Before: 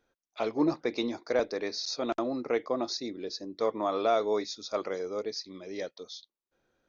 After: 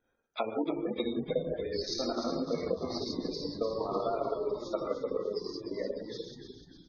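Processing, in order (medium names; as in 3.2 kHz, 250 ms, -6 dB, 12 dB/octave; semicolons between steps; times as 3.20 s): gated-style reverb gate 220 ms flat, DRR -4.5 dB; transient shaper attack +11 dB, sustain -11 dB; compression, threshold -23 dBFS, peak gain reduction 13.5 dB; spectral gate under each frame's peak -20 dB strong; on a send: frequency-shifting echo 299 ms, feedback 49%, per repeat -78 Hz, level -8 dB; on the sum: trim -5.5 dB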